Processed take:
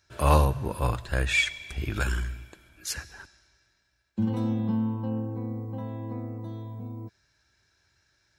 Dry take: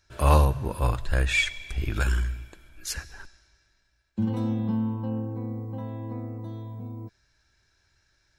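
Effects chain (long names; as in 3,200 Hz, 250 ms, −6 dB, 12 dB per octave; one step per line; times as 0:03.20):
high-pass filter 71 Hz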